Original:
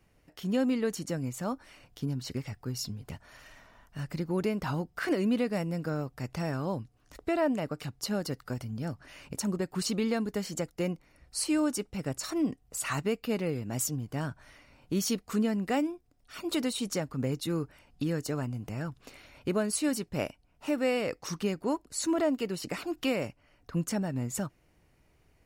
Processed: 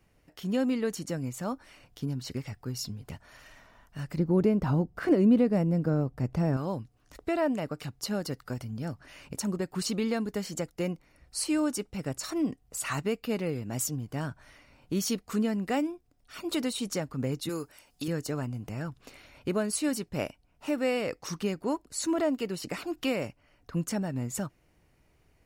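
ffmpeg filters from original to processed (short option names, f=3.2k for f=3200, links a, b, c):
-filter_complex "[0:a]asettb=1/sr,asplit=3[a][b][c];[a]atrim=end=4.174[d];[b]atrim=start=4.17:end=6.57,asetpts=PTS-STARTPTS,afade=t=in:d=0.004:c=qsin,afade=t=out:st=2.396:d=0.004:c=qsin,tiltshelf=f=970:g=7.5[e];[c]atrim=start=6.566[f];[d][e]acrossfade=d=0.004:c1=hsin:c2=qsin[g];[g][f]acrossfade=d=0.004:c1=qsin:c2=hsin,asettb=1/sr,asplit=3[h][i][j];[h]atrim=end=17.494[k];[i]atrim=start=17.49:end=18.08,asetpts=PTS-STARTPTS,afade=t=in:d=0.004:c=qsin,afade=t=out:st=0.586:d=0.004:c=qsin,bass=f=250:g=-10,treble=f=4k:g=12[l];[j]atrim=start=18.076[m];[k][l]acrossfade=d=0.004:c1=hsin:c2=qsin[n];[n][m]acrossfade=d=0.004:c1=qsin:c2=hsin"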